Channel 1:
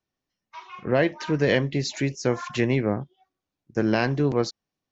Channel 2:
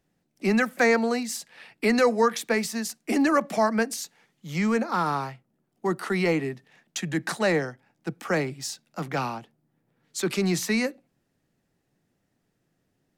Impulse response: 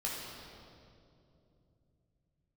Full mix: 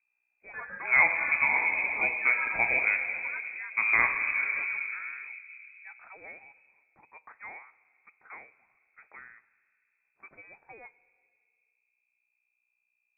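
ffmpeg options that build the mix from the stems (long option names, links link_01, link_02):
-filter_complex "[0:a]volume=-3.5dB,asplit=3[link_01][link_02][link_03];[link_02]volume=-3.5dB[link_04];[link_03]volume=-17.5dB[link_05];[1:a]lowshelf=frequency=320:gain=-10,aeval=exprs='val(0)+0.00562*(sin(2*PI*60*n/s)+sin(2*PI*2*60*n/s)/2+sin(2*PI*3*60*n/s)/3+sin(2*PI*4*60*n/s)/4+sin(2*PI*5*60*n/s)/5)':channel_layout=same,volume=-18.5dB,asplit=3[link_06][link_07][link_08];[link_07]volume=-19.5dB[link_09];[link_08]apad=whole_len=216865[link_10];[link_01][link_10]sidechaingate=range=-33dB:threshold=-57dB:ratio=16:detection=peak[link_11];[2:a]atrim=start_sample=2205[link_12];[link_04][link_09]amix=inputs=2:normalize=0[link_13];[link_13][link_12]afir=irnorm=-1:irlink=0[link_14];[link_05]aecho=0:1:584:1[link_15];[link_11][link_06][link_14][link_15]amix=inputs=4:normalize=0,highpass=320,lowpass=frequency=2300:width_type=q:width=0.5098,lowpass=frequency=2300:width_type=q:width=0.6013,lowpass=frequency=2300:width_type=q:width=0.9,lowpass=frequency=2300:width_type=q:width=2.563,afreqshift=-2700"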